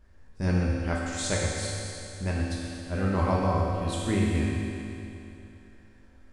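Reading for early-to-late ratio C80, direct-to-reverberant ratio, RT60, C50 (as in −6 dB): −0.5 dB, −5.5 dB, 2.9 s, −2.0 dB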